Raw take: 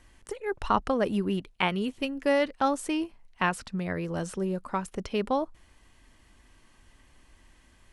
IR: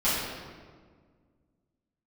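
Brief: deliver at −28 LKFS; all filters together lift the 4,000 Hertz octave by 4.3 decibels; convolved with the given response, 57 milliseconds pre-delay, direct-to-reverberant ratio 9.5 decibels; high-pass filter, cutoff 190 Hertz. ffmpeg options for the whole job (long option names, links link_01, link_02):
-filter_complex "[0:a]highpass=190,equalizer=frequency=4000:width_type=o:gain=6.5,asplit=2[link_01][link_02];[1:a]atrim=start_sample=2205,adelay=57[link_03];[link_02][link_03]afir=irnorm=-1:irlink=0,volume=-23dB[link_04];[link_01][link_04]amix=inputs=2:normalize=0,volume=1dB"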